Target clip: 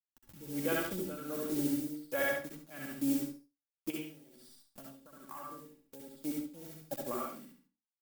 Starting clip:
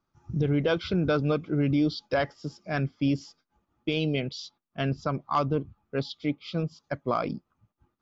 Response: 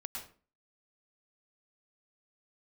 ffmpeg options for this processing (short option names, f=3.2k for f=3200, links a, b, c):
-filter_complex "[0:a]afwtdn=0.0224,acrusher=bits=8:dc=4:mix=0:aa=0.000001,aecho=1:1:3.6:0.52,aecho=1:1:70|140|210:0.562|0.124|0.0272,asettb=1/sr,asplit=3[a][b][c];[a]atrim=end=3.904[d];[b]atrim=start=3.9:end=6.25,asetpts=PTS-STARTPTS,afade=t=in:d=0.004:c=qsin,afade=t=out:st=2.346:d=0.004:c=qsin,acompressor=threshold=-36dB:ratio=12[e];[c]atrim=start=6.246[f];[d][e]acrossfade=d=0.004:c1=hsin:c2=qsin[g];[g][f]acrossfade=d=0.004:c1=qsin:c2=hsin,aemphasis=mode=production:type=75fm,tremolo=f=1.3:d=0.8,equalizer=f=92:w=2.9:g=-13.5[h];[1:a]atrim=start_sample=2205,asetrate=74970,aresample=44100[i];[h][i]afir=irnorm=-1:irlink=0,acompressor=mode=upward:threshold=-51dB:ratio=2.5"